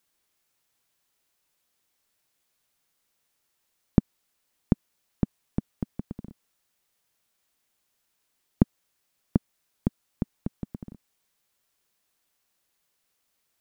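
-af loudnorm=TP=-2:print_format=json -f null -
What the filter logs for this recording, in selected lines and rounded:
"input_i" : "-31.7",
"input_tp" : "-1.7",
"input_lra" : "19.4",
"input_thresh" : "-43.0",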